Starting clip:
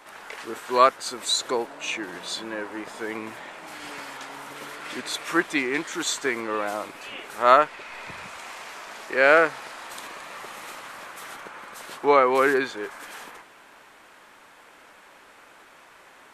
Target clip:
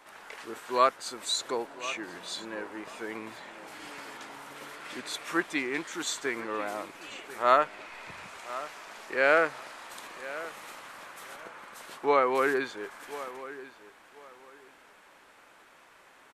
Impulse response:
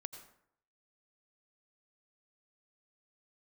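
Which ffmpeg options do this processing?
-filter_complex "[0:a]asplit=2[a][b];[b]adelay=1041,lowpass=f=4.7k:p=1,volume=-15.5dB,asplit=2[c][d];[d]adelay=1041,lowpass=f=4.7k:p=1,volume=0.23[e];[a][c][e]amix=inputs=3:normalize=0,volume=-6dB"

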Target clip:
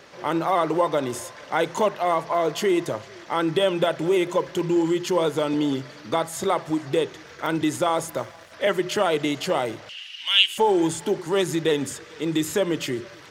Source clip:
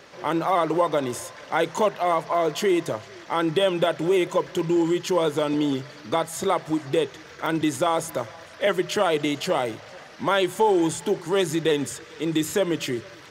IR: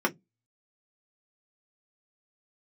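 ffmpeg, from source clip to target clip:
-filter_complex "[0:a]asettb=1/sr,asplit=3[a][b][c];[a]atrim=end=9.894[d];[b]atrim=start=9.89:end=10.58,asetpts=PTS-STARTPTS,afade=t=in:d=0.004:c=qsin,afade=t=out:st=0.686:d=0.004:c=qsin,highpass=f=2.9k:t=q:w=13[e];[c]atrim=start=10.576[f];[d][e]acrossfade=d=0.004:c1=hsin:c2=qsin[g];[g][f]acrossfade=d=0.004:c1=qsin:c2=hsin,asplit=2[h][i];[1:a]atrim=start_sample=2205,adelay=58[j];[i][j]afir=irnorm=-1:irlink=0,volume=-32dB[k];[h][k]amix=inputs=2:normalize=0,asettb=1/sr,asplit=3[l][m][n];[l]atrim=end=8.064[o];[m]atrim=start=8.06:end=8.52,asetpts=PTS-STARTPTS,afade=t=in:d=0.004:c=qsin,afade=t=out:st=0.456:d=0.004:c=qsin,aeval=exprs='sgn(val(0))*max(abs(val(0))-0.00316,0)':c=same[p];[n]atrim=start=8.516[q];[o][p]acrossfade=d=0.004:c1=hsin:c2=qsin[r];[r][q]acrossfade=d=0.004:c1=qsin:c2=hsin"

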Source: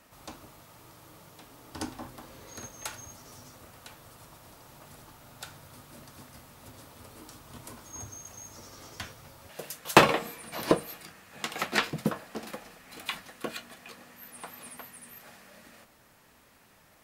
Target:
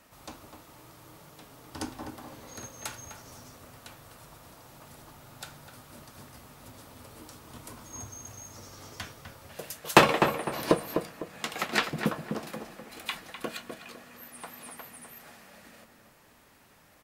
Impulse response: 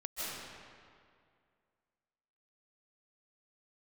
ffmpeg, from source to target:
-filter_complex "[0:a]asplit=2[a][b];[b]adelay=252,lowpass=f=1.8k:p=1,volume=-6dB,asplit=2[c][d];[d]adelay=252,lowpass=f=1.8k:p=1,volume=0.35,asplit=2[e][f];[f]adelay=252,lowpass=f=1.8k:p=1,volume=0.35,asplit=2[g][h];[h]adelay=252,lowpass=f=1.8k:p=1,volume=0.35[i];[a][c][e][g][i]amix=inputs=5:normalize=0"

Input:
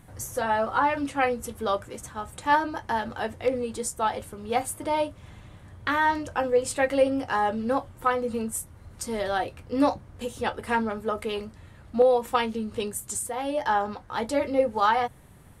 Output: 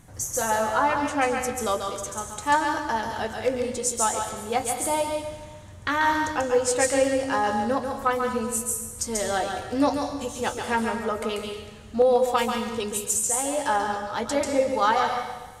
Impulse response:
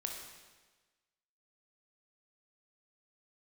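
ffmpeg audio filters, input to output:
-filter_complex "[0:a]equalizer=f=6.5k:w=1.9:g=10,asplit=2[a][b];[1:a]atrim=start_sample=2205,highshelf=f=5.1k:g=8.5,adelay=139[c];[b][c]afir=irnorm=-1:irlink=0,volume=-4.5dB[d];[a][d]amix=inputs=2:normalize=0"

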